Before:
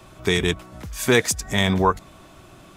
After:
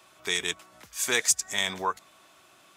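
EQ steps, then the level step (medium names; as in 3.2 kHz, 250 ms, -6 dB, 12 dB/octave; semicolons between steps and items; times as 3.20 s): high-pass 1.3 kHz 6 dB/octave; dynamic bell 7.1 kHz, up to +7 dB, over -42 dBFS, Q 1.3; -4.0 dB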